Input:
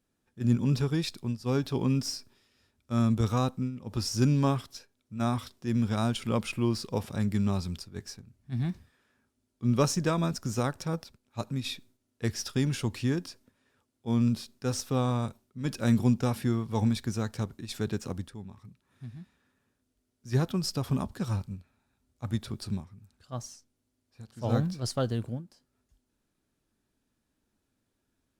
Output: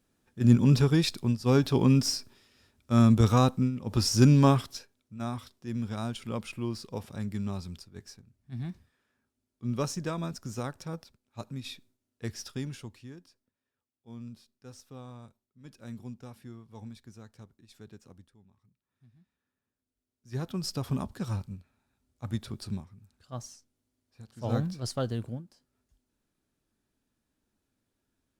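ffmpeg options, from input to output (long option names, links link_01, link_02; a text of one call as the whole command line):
ffmpeg -i in.wav -af "volume=21dB,afade=type=out:start_time=4.67:duration=0.52:silence=0.281838,afade=type=out:start_time=12.44:duration=0.58:silence=0.251189,afade=type=in:start_time=19.13:duration=1.18:silence=0.398107,afade=type=in:start_time=20.31:duration=0.39:silence=0.398107" out.wav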